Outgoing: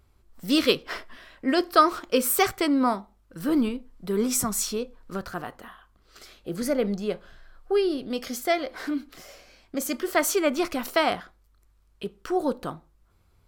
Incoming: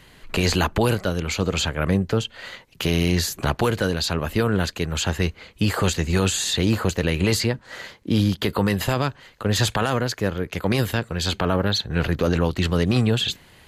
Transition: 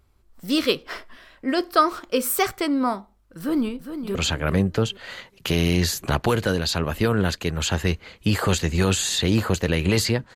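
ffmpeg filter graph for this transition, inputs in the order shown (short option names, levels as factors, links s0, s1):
-filter_complex "[0:a]apad=whole_dur=10.35,atrim=end=10.35,atrim=end=4.152[s0];[1:a]atrim=start=1.498:end=7.7[s1];[s0][s1]acrossfade=d=0.004:c1=hsin:c2=hsin,asplit=2[s2][s3];[s3]afade=t=in:st=3.38:d=0.01,afade=t=out:st=4.15:d=0.01,aecho=0:1:410|820|1230:0.334965|0.0837414|0.0209353[s4];[s2][s4]amix=inputs=2:normalize=0"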